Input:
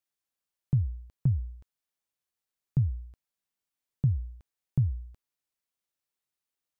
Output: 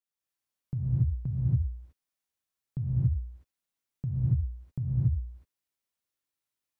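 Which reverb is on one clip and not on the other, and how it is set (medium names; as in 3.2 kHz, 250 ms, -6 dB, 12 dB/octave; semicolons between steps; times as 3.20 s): gated-style reverb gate 310 ms rising, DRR -6.5 dB; trim -7.5 dB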